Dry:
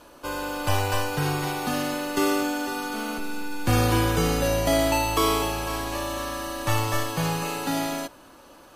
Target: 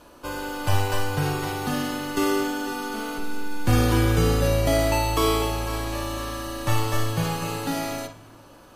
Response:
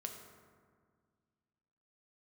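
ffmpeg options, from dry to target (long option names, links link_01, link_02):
-filter_complex "[0:a]lowshelf=frequency=230:gain=5,asplit=2[link_01][link_02];[1:a]atrim=start_sample=2205,lowpass=5500,adelay=52[link_03];[link_02][link_03]afir=irnorm=-1:irlink=0,volume=-4.5dB[link_04];[link_01][link_04]amix=inputs=2:normalize=0,volume=-1.5dB"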